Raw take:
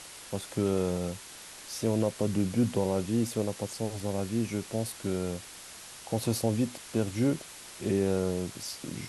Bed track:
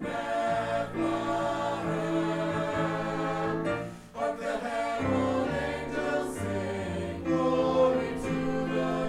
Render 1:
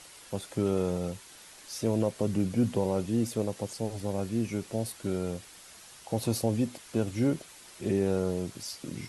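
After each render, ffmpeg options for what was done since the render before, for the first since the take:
-af "afftdn=nr=6:nf=-47"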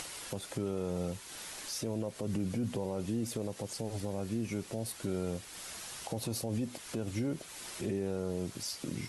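-af "alimiter=level_in=1.5dB:limit=-24dB:level=0:latency=1:release=98,volume=-1.5dB,acompressor=mode=upward:threshold=-36dB:ratio=2.5"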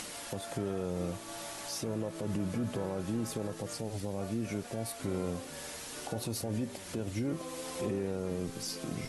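-filter_complex "[1:a]volume=-17dB[a];[0:a][a]amix=inputs=2:normalize=0"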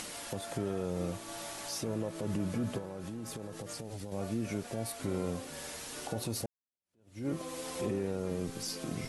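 -filter_complex "[0:a]asettb=1/sr,asplit=3[a][b][c];[a]atrim=end=2.784[d];[b]atrim=start=2.78:end=4.12,asetpts=PTS-STARTPTS,afade=t=in:d=0.004:c=qsin,afade=t=out:st=1.336:d=0.004:c=qsin,acompressor=threshold=-37dB:ratio=6:attack=3.2:release=140:knee=1:detection=peak[e];[c]atrim=start=4.116[f];[d][e]acrossfade=d=0.004:c1=hsin:c2=qsin[g];[g][f]acrossfade=d=0.004:c1=qsin:c2=hsin,asplit=2[h][i];[h]atrim=end=6.46,asetpts=PTS-STARTPTS,afade=t=out:st=6.456:d=0.004:c=hsin[j];[i]atrim=start=6.46,asetpts=PTS-STARTPTS,afade=t=in:d=0.81:c=exp[k];[j][k]concat=n=2:v=0:a=1"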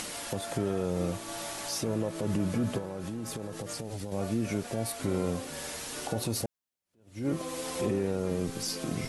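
-af "volume=4.5dB"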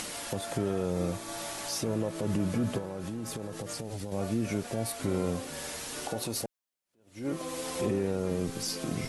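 -filter_complex "[0:a]asettb=1/sr,asplit=3[a][b][c];[a]atrim=end=0.924[d];[b]atrim=start=0.92:end=1.4,asetpts=PTS-STARTPTS,afade=t=in:d=0.004:c=qsin,afade=t=out:st=0.476:d=0.004:c=qsin,bandreject=f=2.9k:w=12[e];[c]atrim=start=1.396[f];[d][e]acrossfade=d=0.004:c1=hsin:c2=qsin[g];[g][f]acrossfade=d=0.004:c1=qsin:c2=hsin,asettb=1/sr,asplit=3[h][i][j];[h]atrim=end=6.084[k];[i]atrim=start=6.08:end=7.42,asetpts=PTS-STARTPTS,afade=t=in:d=0.004:c=qsin,afade=t=out:st=1.336:d=0.004:c=qsin,equalizer=f=67:w=0.39:g=-9[l];[j]atrim=start=7.416[m];[k][l]acrossfade=d=0.004:c1=hsin:c2=qsin[n];[n][m]acrossfade=d=0.004:c1=qsin:c2=hsin"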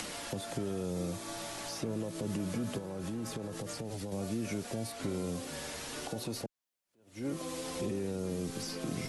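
-filter_complex "[0:a]acrossover=split=140|350|3200|6500[a][b][c][d][e];[a]acompressor=threshold=-46dB:ratio=4[f];[b]acompressor=threshold=-36dB:ratio=4[g];[c]acompressor=threshold=-42dB:ratio=4[h];[d]acompressor=threshold=-47dB:ratio=4[i];[e]acompressor=threshold=-50dB:ratio=4[j];[f][g][h][i][j]amix=inputs=5:normalize=0"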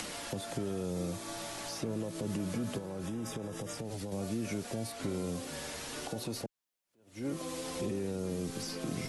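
-filter_complex "[0:a]asettb=1/sr,asplit=3[a][b][c];[a]atrim=end=3.064[d];[b]atrim=start=3.06:end=3.78,asetpts=PTS-STARTPTS,afade=t=in:d=0.004:c=qsin,afade=t=out:st=0.716:d=0.004:c=qsin,asuperstop=centerf=4300:order=8:qfactor=6.5[e];[c]atrim=start=3.776[f];[d][e]acrossfade=d=0.004:c1=hsin:c2=qsin[g];[g][f]acrossfade=d=0.004:c1=qsin:c2=hsin"

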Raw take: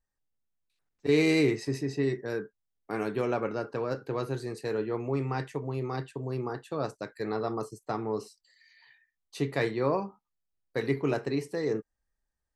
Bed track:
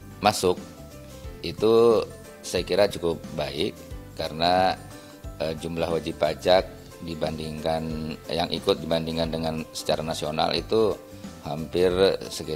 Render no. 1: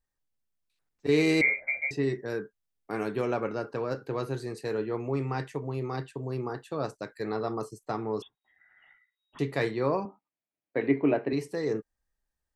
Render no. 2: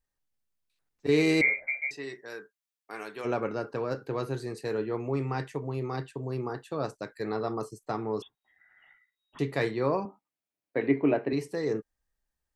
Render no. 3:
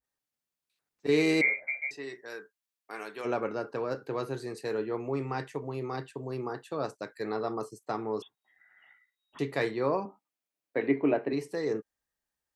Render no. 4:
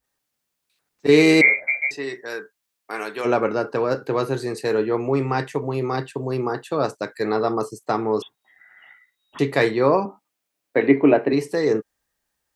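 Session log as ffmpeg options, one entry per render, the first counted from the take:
-filter_complex "[0:a]asettb=1/sr,asplit=3[a][b][c];[a]atrim=end=1.414[d];[b]atrim=start=1.41:end=1.91,asetpts=PTS-STARTPTS,afade=t=in:d=0.004:c=qsin,afade=t=out:st=0.496:d=0.004:c=qsin,lowpass=f=2.1k:t=q:w=0.5098,lowpass=f=2.1k:t=q:w=0.6013,lowpass=f=2.1k:t=q:w=0.9,lowpass=f=2.1k:t=q:w=2.563,afreqshift=-2500[e];[c]atrim=start=1.906[f];[d][e]acrossfade=d=0.004:c1=hsin:c2=qsin[g];[g][f]acrossfade=d=0.004:c1=qsin:c2=hsin,asettb=1/sr,asplit=3[h][i][j];[h]atrim=end=8.224[k];[i]atrim=start=8.22:end=9.39,asetpts=PTS-STARTPTS,afade=t=in:d=0.004:c=qsin,afade=t=out:st=1.166:d=0.004:c=qsin,lowpass=f=3.2k:t=q:w=0.5098,lowpass=f=3.2k:t=q:w=0.6013,lowpass=f=3.2k:t=q:w=0.9,lowpass=f=3.2k:t=q:w=2.563,afreqshift=-3800[l];[j]atrim=start=9.386[m];[k][l]acrossfade=d=0.004:c1=hsin:c2=qsin[n];[n][m]acrossfade=d=0.004:c1=qsin:c2=hsin,asettb=1/sr,asplit=3[o][p][q];[o]atrim=end=10.054[r];[p]atrim=start=10.05:end=11.33,asetpts=PTS-STARTPTS,afade=t=in:d=0.004:c=qsin,afade=t=out:st=1.276:d=0.004:c=qsin,highpass=150,equalizer=f=290:t=q:w=4:g=8,equalizer=f=630:t=q:w=4:g=7,equalizer=f=1.3k:t=q:w=4:g=-4,equalizer=f=2.3k:t=q:w=4:g=4,lowpass=f=2.9k:w=0.5412,lowpass=f=2.9k:w=1.3066[s];[q]atrim=start=11.326[t];[r][s]acrossfade=d=0.004:c1=hsin:c2=qsin[u];[u][t]acrossfade=d=0.004:c1=qsin:c2=hsin"
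-filter_complex "[0:a]asplit=3[a][b][c];[a]afade=t=out:st=1.66:d=0.02[d];[b]highpass=f=1.3k:p=1,afade=t=in:st=1.66:d=0.02,afade=t=out:st=3.24:d=0.02[e];[c]afade=t=in:st=3.24:d=0.02[f];[d][e][f]amix=inputs=3:normalize=0"
-af "highpass=f=210:p=1,adynamicequalizer=threshold=0.00891:dfrequency=1500:dqfactor=0.7:tfrequency=1500:tqfactor=0.7:attack=5:release=100:ratio=0.375:range=1.5:mode=cutabove:tftype=highshelf"
-af "volume=11dB"

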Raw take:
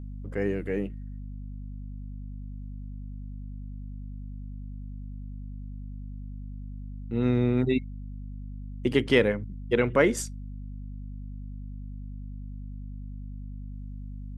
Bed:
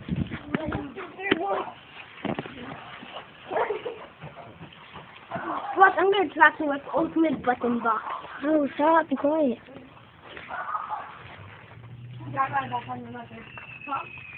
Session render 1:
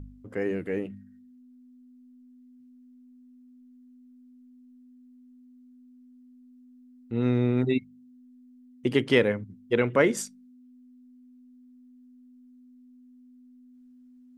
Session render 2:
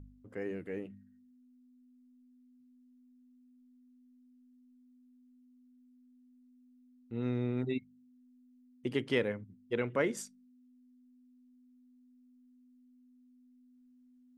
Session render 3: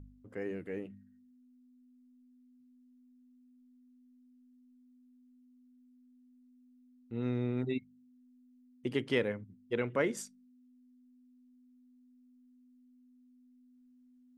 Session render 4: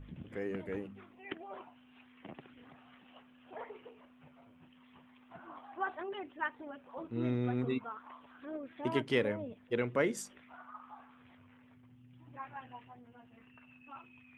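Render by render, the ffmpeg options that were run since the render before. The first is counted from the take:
-af "bandreject=f=50:t=h:w=4,bandreject=f=100:t=h:w=4,bandreject=f=150:t=h:w=4,bandreject=f=200:t=h:w=4"
-af "volume=-9.5dB"
-af anull
-filter_complex "[1:a]volume=-20dB[a];[0:a][a]amix=inputs=2:normalize=0"

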